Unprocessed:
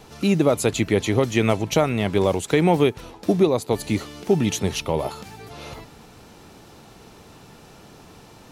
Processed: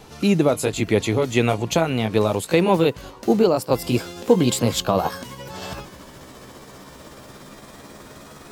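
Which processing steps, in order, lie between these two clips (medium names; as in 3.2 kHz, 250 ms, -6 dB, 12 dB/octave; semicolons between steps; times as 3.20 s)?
pitch bend over the whole clip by +6 st starting unshifted; gain riding 2 s; trim +2 dB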